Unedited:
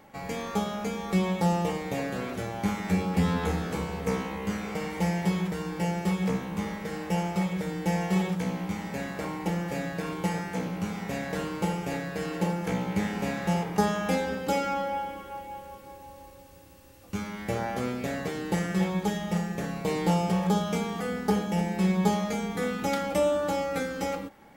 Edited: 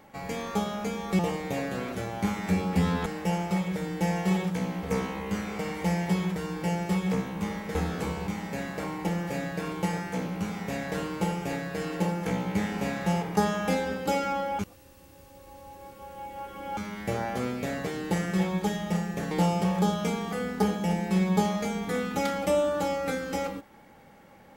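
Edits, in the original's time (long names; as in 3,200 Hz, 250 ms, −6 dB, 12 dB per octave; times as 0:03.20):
0:01.19–0:01.60: remove
0:03.47–0:03.99: swap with 0:06.91–0:08.68
0:15.00–0:17.18: reverse
0:19.72–0:19.99: remove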